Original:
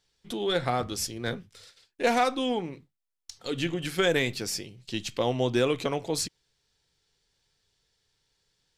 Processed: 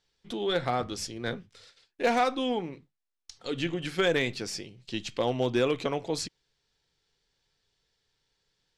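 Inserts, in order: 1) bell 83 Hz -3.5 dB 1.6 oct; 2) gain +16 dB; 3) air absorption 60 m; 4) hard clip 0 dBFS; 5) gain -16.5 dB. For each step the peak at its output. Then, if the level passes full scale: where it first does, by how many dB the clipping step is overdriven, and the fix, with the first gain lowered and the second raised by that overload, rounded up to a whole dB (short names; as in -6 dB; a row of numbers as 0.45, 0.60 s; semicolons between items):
-12.0, +4.0, +3.5, 0.0, -16.5 dBFS; step 2, 3.5 dB; step 2 +12 dB, step 5 -12.5 dB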